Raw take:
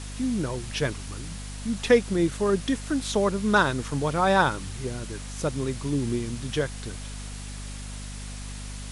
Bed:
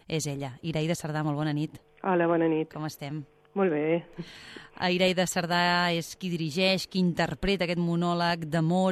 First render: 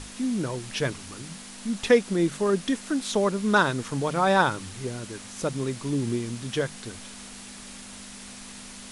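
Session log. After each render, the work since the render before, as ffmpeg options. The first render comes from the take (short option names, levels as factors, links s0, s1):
-af "bandreject=f=50:t=h:w=6,bandreject=f=100:t=h:w=6,bandreject=f=150:t=h:w=6"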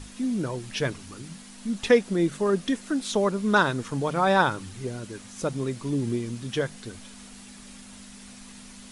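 -af "afftdn=nr=6:nf=-43"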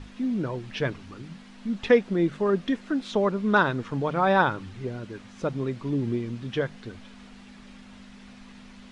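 -af "lowpass=3200"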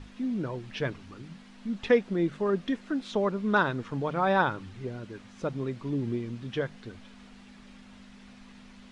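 -af "volume=0.668"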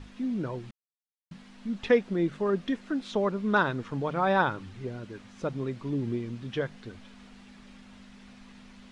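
-filter_complex "[0:a]asplit=3[s0][s1][s2];[s0]atrim=end=0.71,asetpts=PTS-STARTPTS,afade=t=out:st=0.706:d=0.004:c=hsin[s3];[s1]atrim=start=0.71:end=1.31,asetpts=PTS-STARTPTS,volume=0[s4];[s2]atrim=start=1.31,asetpts=PTS-STARTPTS,afade=t=in:d=0.004:c=hsin[s5];[s3][s4][s5]concat=n=3:v=0:a=1"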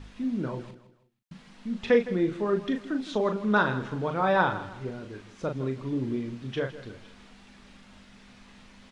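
-filter_complex "[0:a]asplit=2[s0][s1];[s1]adelay=38,volume=0.473[s2];[s0][s2]amix=inputs=2:normalize=0,aecho=1:1:161|322|483:0.178|0.0622|0.0218"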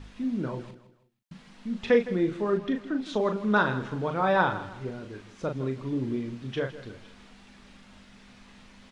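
-filter_complex "[0:a]asettb=1/sr,asplit=3[s0][s1][s2];[s0]atrim=end=2.574[s3];[s1]atrim=start=2.57:end=3.06,asetpts=PTS-STARTPTS,afade=t=in:d=0.004:c=qsin,afade=t=out:st=0.486:d=0.004:c=qsin,aemphasis=mode=reproduction:type=cd[s4];[s2]atrim=start=3.056[s5];[s3][s4]acrossfade=d=0.004:c1=hsin:c2=qsin[s6];[s6][s5]acrossfade=d=0.004:c1=qsin:c2=hsin"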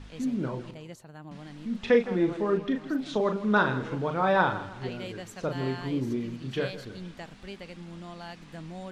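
-filter_complex "[1:a]volume=0.158[s0];[0:a][s0]amix=inputs=2:normalize=0"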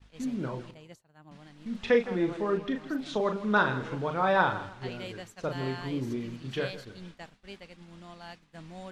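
-af "agate=range=0.0224:threshold=0.0141:ratio=3:detection=peak,equalizer=f=240:w=0.6:g=-3.5"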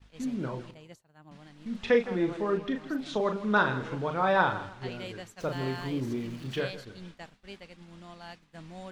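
-filter_complex "[0:a]asettb=1/sr,asplit=3[s0][s1][s2];[s0]atrim=end=5.404[s3];[s1]atrim=start=5.4:end=6.61,asetpts=PTS-STARTPTS,afade=t=in:d=0.004:c=qsin,afade=t=out:st=1.206:d=0.004:c=qsin,aeval=exprs='val(0)+0.5*0.00447*sgn(val(0))':c=same[s4];[s2]atrim=start=6.606[s5];[s3][s4]acrossfade=d=0.004:c1=hsin:c2=qsin[s6];[s6][s5]acrossfade=d=0.004:c1=qsin:c2=hsin"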